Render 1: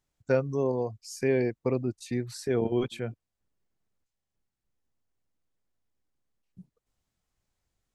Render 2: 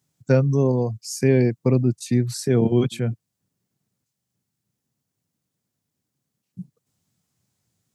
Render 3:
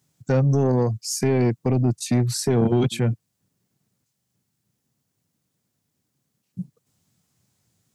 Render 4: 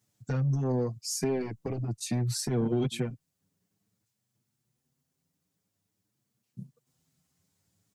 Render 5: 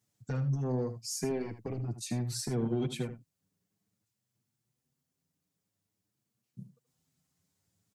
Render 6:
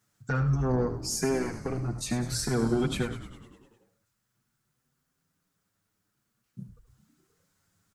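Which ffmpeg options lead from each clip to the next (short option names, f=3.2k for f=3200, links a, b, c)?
-af "highpass=f=120:w=0.5412,highpass=f=120:w=1.3066,bass=f=250:g=14,treble=f=4k:g=8,volume=3.5dB"
-af "alimiter=limit=-12dB:level=0:latency=1:release=68,asoftclip=type=tanh:threshold=-17.5dB,volume=4.5dB"
-filter_complex "[0:a]acompressor=threshold=-21dB:ratio=6,asplit=2[a][b];[b]adelay=6.6,afreqshift=0.49[c];[a][c]amix=inputs=2:normalize=1,volume=-2.5dB"
-af "aecho=1:1:78:0.251,volume=-4dB"
-filter_complex "[0:a]equalizer=f=1.4k:w=1.9:g=11.5,bandreject=f=60:t=h:w=6,bandreject=f=120:t=h:w=6,asplit=9[a][b][c][d][e][f][g][h][i];[b]adelay=101,afreqshift=-85,volume=-12.5dB[j];[c]adelay=202,afreqshift=-170,volume=-16.4dB[k];[d]adelay=303,afreqshift=-255,volume=-20.3dB[l];[e]adelay=404,afreqshift=-340,volume=-24.1dB[m];[f]adelay=505,afreqshift=-425,volume=-28dB[n];[g]adelay=606,afreqshift=-510,volume=-31.9dB[o];[h]adelay=707,afreqshift=-595,volume=-35.8dB[p];[i]adelay=808,afreqshift=-680,volume=-39.6dB[q];[a][j][k][l][m][n][o][p][q]amix=inputs=9:normalize=0,volume=5dB"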